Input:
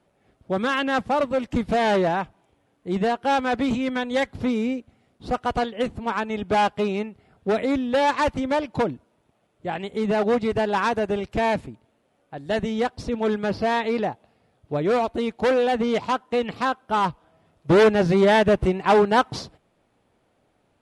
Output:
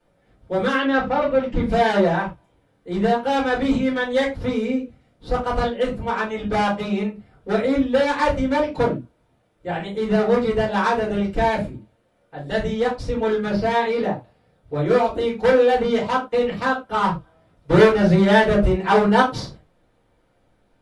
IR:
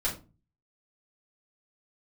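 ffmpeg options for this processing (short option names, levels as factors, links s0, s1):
-filter_complex "[0:a]asettb=1/sr,asplit=3[s0][s1][s2];[s0]atrim=end=0.754[s3];[s1]atrim=start=0.75:end=1.63,asetpts=PTS-STARTPTS,afade=t=in:d=0.004:c=qsin,afade=t=out:st=0.876:d=0.004:c=qsin,lowpass=4000[s4];[s2]atrim=start=1.626[s5];[s3][s4]acrossfade=d=0.004:c1=hsin:c2=qsin[s6];[s6][s5]acrossfade=d=0.004:c1=qsin:c2=hsin[s7];[1:a]atrim=start_sample=2205,afade=t=out:st=0.17:d=0.01,atrim=end_sample=7938[s8];[s7][s8]afir=irnorm=-1:irlink=0,volume=0.596"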